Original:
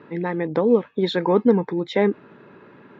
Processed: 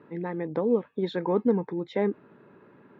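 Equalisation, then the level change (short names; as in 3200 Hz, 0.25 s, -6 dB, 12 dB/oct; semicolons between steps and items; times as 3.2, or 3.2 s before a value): high shelf 2100 Hz -8.5 dB; -6.5 dB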